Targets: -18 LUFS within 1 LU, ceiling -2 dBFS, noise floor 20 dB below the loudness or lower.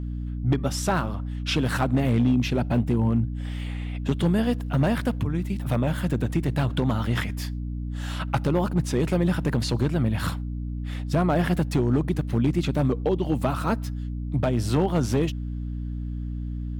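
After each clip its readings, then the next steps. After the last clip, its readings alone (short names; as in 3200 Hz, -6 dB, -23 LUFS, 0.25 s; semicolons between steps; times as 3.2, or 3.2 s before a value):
clipped 0.8%; flat tops at -14.5 dBFS; hum 60 Hz; harmonics up to 300 Hz; hum level -28 dBFS; loudness -25.5 LUFS; peak -14.5 dBFS; loudness target -18.0 LUFS
-> clip repair -14.5 dBFS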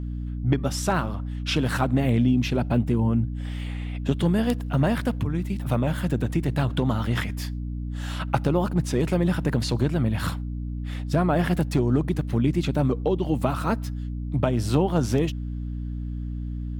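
clipped 0.0%; hum 60 Hz; harmonics up to 300 Hz; hum level -28 dBFS
-> notches 60/120/180/240/300 Hz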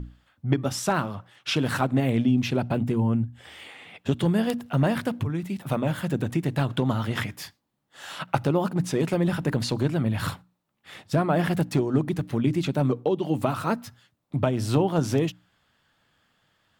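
hum none; loudness -26.0 LUFS; peak -6.0 dBFS; loudness target -18.0 LUFS
-> gain +8 dB; limiter -2 dBFS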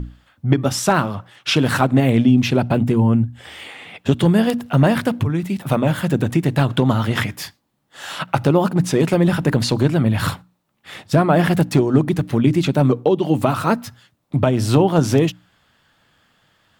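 loudness -18.0 LUFS; peak -2.0 dBFS; noise floor -63 dBFS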